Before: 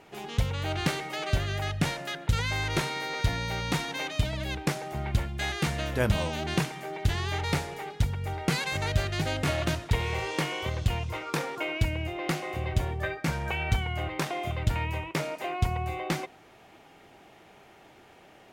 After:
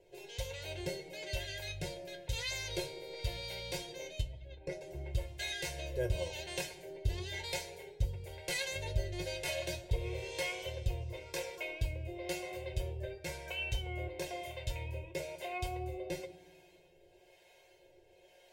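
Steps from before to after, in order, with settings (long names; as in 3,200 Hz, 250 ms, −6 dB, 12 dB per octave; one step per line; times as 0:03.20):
0:04.21–0:04.81: spectral envelope exaggerated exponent 2
two-band tremolo in antiphase 1 Hz, depth 70%, crossover 590 Hz
phaser with its sweep stopped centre 500 Hz, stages 4
tuned comb filter 180 Hz, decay 0.16 s, harmonics all, mix 90%
convolution reverb RT60 1.5 s, pre-delay 3 ms, DRR 14.5 dB
level +4.5 dB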